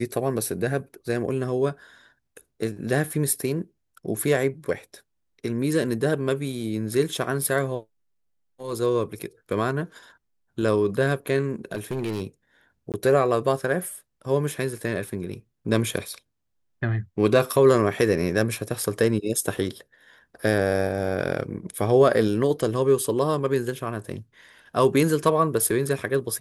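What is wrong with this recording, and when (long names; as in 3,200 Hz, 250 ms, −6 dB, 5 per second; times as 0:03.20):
0:11.72–0:12.22: clipping −23.5 dBFS
0:12.92–0:12.94: drop-out 18 ms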